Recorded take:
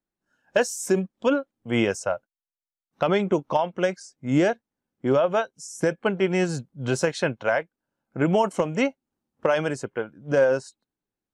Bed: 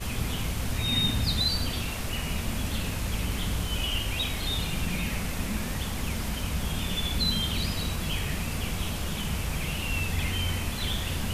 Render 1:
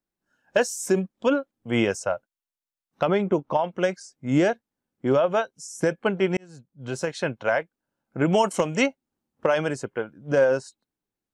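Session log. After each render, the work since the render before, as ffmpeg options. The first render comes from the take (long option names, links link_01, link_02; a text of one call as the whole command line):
ffmpeg -i in.wav -filter_complex "[0:a]asettb=1/sr,asplit=3[link_01][link_02][link_03];[link_01]atrim=end=3.054[link_04];[link_02]atrim=start=3.05:end=3.64,asetpts=PTS-STARTPTS,afade=type=in:duration=0.004:curve=qsin,afade=type=out:start_time=0.586:duration=0.004:curve=qsin,highshelf=frequency=3000:gain=-9.5[link_05];[link_03]atrim=start=3.636[link_06];[link_04][link_05]acrossfade=duration=0.004:curve1=hsin:curve2=qsin[link_07];[link_07][link_06]acrossfade=duration=0.004:curve1=qsin:curve2=hsin,asettb=1/sr,asplit=3[link_08][link_09][link_10];[link_08]atrim=end=8.324[link_11];[link_09]atrim=start=8.32:end=8.86,asetpts=PTS-STARTPTS,afade=type=in:duration=0.004:curve=qsin,afade=type=out:start_time=0.536:duration=0.004:curve=qsin,highshelf=frequency=2600:gain=9[link_12];[link_10]atrim=start=8.856[link_13];[link_11][link_12]acrossfade=duration=0.004:curve1=hsin:curve2=qsin[link_14];[link_14][link_13]acrossfade=duration=0.004:curve1=qsin:curve2=hsin,asplit=2[link_15][link_16];[link_15]atrim=end=6.37,asetpts=PTS-STARTPTS,afade=type=out:start_time=6.366:duration=0.004:curve=hsin[link_17];[link_16]atrim=start=6.37,asetpts=PTS-STARTPTS,afade=type=in:duration=1.15[link_18];[link_17][link_18]concat=n=2:v=0:a=1" out.wav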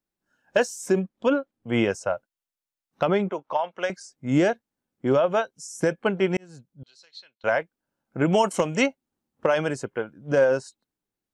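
ffmpeg -i in.wav -filter_complex "[0:a]asettb=1/sr,asplit=3[link_01][link_02][link_03];[link_01]atrim=end=0.654[link_04];[link_02]atrim=start=0.65:end=2.14,asetpts=PTS-STARTPTS,afade=type=in:duration=0.004:curve=qsin,afade=type=out:start_time=1.486:duration=0.004:curve=qsin,highshelf=frequency=5200:gain=-7[link_05];[link_03]atrim=start=2.136[link_06];[link_04][link_05]acrossfade=duration=0.004:curve1=hsin:curve2=qsin[link_07];[link_07][link_06]acrossfade=duration=0.004:curve1=qsin:curve2=hsin,asettb=1/sr,asplit=3[link_08][link_09][link_10];[link_08]atrim=end=3.294[link_11];[link_09]atrim=start=3.29:end=3.9,asetpts=PTS-STARTPTS,afade=type=in:duration=0.004:curve=qsin,afade=type=out:start_time=0.606:duration=0.004:curve=qsin,acrossover=split=520 6700:gain=0.141 1 0.251[link_12][link_13][link_14];[link_12][link_13][link_14]amix=inputs=3:normalize=0[link_15];[link_10]atrim=start=3.896[link_16];[link_11][link_15]acrossfade=duration=0.004:curve1=hsin:curve2=qsin[link_17];[link_17][link_16]acrossfade=duration=0.004:curve1=qsin:curve2=hsin,asettb=1/sr,asplit=3[link_18][link_19][link_20];[link_18]atrim=end=6.834[link_21];[link_19]atrim=start=6.83:end=7.44,asetpts=PTS-STARTPTS,afade=type=in:duration=0.004:curve=qsin,afade=type=out:start_time=0.606:duration=0.004:curve=qsin,bandpass=frequency=4200:width_type=q:width=9.8[link_22];[link_20]atrim=start=7.436[link_23];[link_21][link_22]acrossfade=duration=0.004:curve1=hsin:curve2=qsin[link_24];[link_24][link_23]acrossfade=duration=0.004:curve1=qsin:curve2=hsin" out.wav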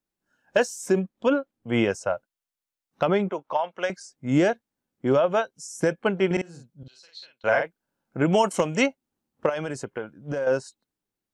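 ffmpeg -i in.wav -filter_complex "[0:a]asettb=1/sr,asplit=3[link_01][link_02][link_03];[link_01]atrim=end=6.264[link_04];[link_02]atrim=start=6.26:end=8.17,asetpts=PTS-STARTPTS,afade=type=in:duration=0.004:curve=qsin,afade=type=out:start_time=1.906:duration=0.004:curve=qsin,asplit=2[link_05][link_06];[link_06]adelay=47,volume=-4dB[link_07];[link_05][link_07]amix=inputs=2:normalize=0,atrim=end_sample=84231[link_08];[link_03]atrim=start=8.166[link_09];[link_04][link_08]acrossfade=duration=0.004:curve1=hsin:curve2=qsin[link_10];[link_10][link_09]acrossfade=duration=0.004:curve1=qsin:curve2=hsin,asettb=1/sr,asplit=3[link_11][link_12][link_13];[link_11]atrim=end=9.494[link_14];[link_12]atrim=start=9.49:end=10.47,asetpts=PTS-STARTPTS,afade=type=in:duration=0.004:curve=qsin,afade=type=out:start_time=0.976:duration=0.004:curve=qsin,acompressor=threshold=-25dB:ratio=6:attack=3.2:release=140:knee=1:detection=peak[link_15];[link_13]atrim=start=10.466[link_16];[link_14][link_15]acrossfade=duration=0.004:curve1=hsin:curve2=qsin[link_17];[link_17][link_16]acrossfade=duration=0.004:curve1=qsin:curve2=hsin" out.wav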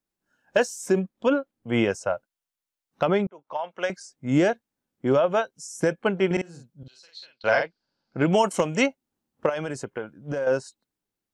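ffmpeg -i in.wav -filter_complex "[0:a]asettb=1/sr,asplit=3[link_01][link_02][link_03];[link_01]atrim=end=7.324[link_04];[link_02]atrim=start=7.32:end=8.29,asetpts=PTS-STARTPTS,afade=type=in:duration=0.004:curve=qsin,afade=type=out:start_time=0.966:duration=0.004:curve=qsin,lowpass=frequency=4700:width_type=q:width=8.5[link_05];[link_03]atrim=start=8.286[link_06];[link_04][link_05]acrossfade=duration=0.004:curve1=hsin:curve2=qsin[link_07];[link_07][link_06]acrossfade=duration=0.004:curve1=qsin:curve2=hsin,asplit=2[link_08][link_09];[link_08]atrim=end=3.27,asetpts=PTS-STARTPTS,afade=type=out:start_time=3.266:duration=0.004:curve=hsin[link_10];[link_09]atrim=start=3.27,asetpts=PTS-STARTPTS,afade=type=in:duration=0.55[link_11];[link_10][link_11]concat=n=2:v=0:a=1" out.wav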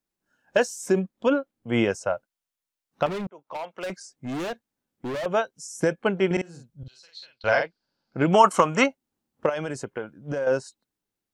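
ffmpeg -i in.wav -filter_complex "[0:a]asettb=1/sr,asplit=3[link_01][link_02][link_03];[link_01]atrim=end=3.064[link_04];[link_02]atrim=start=3.06:end=5.26,asetpts=PTS-STARTPTS,afade=type=in:duration=0.004:curve=qsin,afade=type=out:start_time=2.196:duration=0.004:curve=qsin,volume=28.5dB,asoftclip=hard,volume=-28.5dB[link_05];[link_03]atrim=start=5.256[link_06];[link_04][link_05]acrossfade=duration=0.004:curve1=hsin:curve2=qsin[link_07];[link_07][link_06]acrossfade=duration=0.004:curve1=qsin:curve2=hsin,asplit=3[link_08][link_09][link_10];[link_08]afade=type=out:start_time=6.68:duration=0.02[link_11];[link_09]asubboost=boost=4:cutoff=110,afade=type=in:start_time=6.68:duration=0.02,afade=type=out:start_time=7.51:duration=0.02[link_12];[link_10]afade=type=in:start_time=7.51:duration=0.02[link_13];[link_11][link_12][link_13]amix=inputs=3:normalize=0,asettb=1/sr,asplit=3[link_14][link_15][link_16];[link_14]atrim=end=8.344[link_17];[link_15]atrim=start=8.34:end=8.84,asetpts=PTS-STARTPTS,afade=type=in:duration=0.004:curve=qsin,afade=type=out:start_time=0.496:duration=0.004:curve=qsin,equalizer=frequency=1200:width_type=o:width=0.79:gain=14[link_18];[link_16]atrim=start=8.836[link_19];[link_17][link_18]acrossfade=duration=0.004:curve1=hsin:curve2=qsin[link_20];[link_20][link_19]acrossfade=duration=0.004:curve1=qsin:curve2=hsin" out.wav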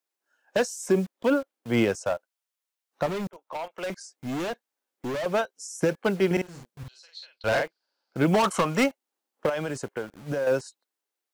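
ffmpeg -i in.wav -filter_complex "[0:a]acrossover=split=370[link_01][link_02];[link_01]acrusher=bits=7:mix=0:aa=0.000001[link_03];[link_02]volume=21dB,asoftclip=hard,volume=-21dB[link_04];[link_03][link_04]amix=inputs=2:normalize=0" out.wav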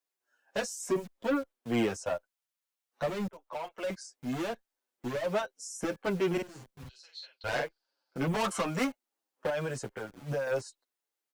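ffmpeg -i in.wav -filter_complex "[0:a]asoftclip=type=tanh:threshold=-22dB,asplit=2[link_01][link_02];[link_02]adelay=7.3,afreqshift=-1.5[link_03];[link_01][link_03]amix=inputs=2:normalize=1" out.wav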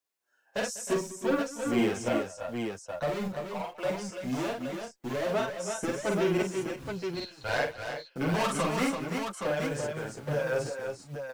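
ffmpeg -i in.wav -af "aecho=1:1:47|198|311|338|370|823:0.708|0.141|0.178|0.531|0.188|0.531" out.wav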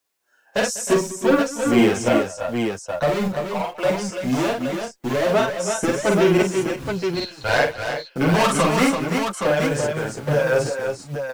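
ffmpeg -i in.wav -af "volume=10.5dB" out.wav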